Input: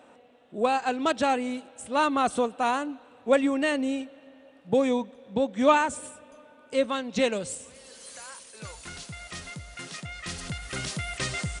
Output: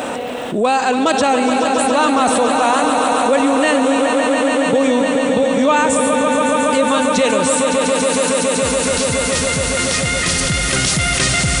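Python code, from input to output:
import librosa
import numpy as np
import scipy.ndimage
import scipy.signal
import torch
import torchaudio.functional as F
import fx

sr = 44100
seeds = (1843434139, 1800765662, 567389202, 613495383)

y = fx.high_shelf(x, sr, hz=7500.0, db=9.5)
y = fx.echo_swell(y, sr, ms=140, loudest=5, wet_db=-10.5)
y = fx.env_flatten(y, sr, amount_pct=70)
y = F.gain(torch.from_numpy(y), 3.5).numpy()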